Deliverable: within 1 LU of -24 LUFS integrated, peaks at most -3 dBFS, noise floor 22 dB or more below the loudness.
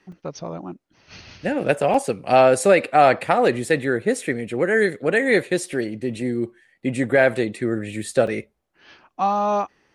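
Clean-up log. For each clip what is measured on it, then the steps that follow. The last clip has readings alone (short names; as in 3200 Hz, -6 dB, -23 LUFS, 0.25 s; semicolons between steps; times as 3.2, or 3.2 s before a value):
dropouts 3; longest dropout 3.5 ms; loudness -20.5 LUFS; peak -3.5 dBFS; loudness target -24.0 LUFS
-> interpolate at 0.12/1.94/8.27, 3.5 ms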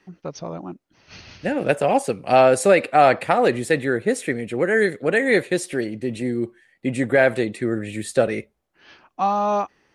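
dropouts 0; loudness -20.5 LUFS; peak -3.5 dBFS; loudness target -24.0 LUFS
-> gain -3.5 dB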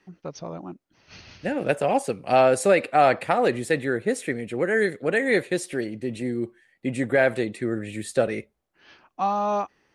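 loudness -24.0 LUFS; peak -7.0 dBFS; noise floor -70 dBFS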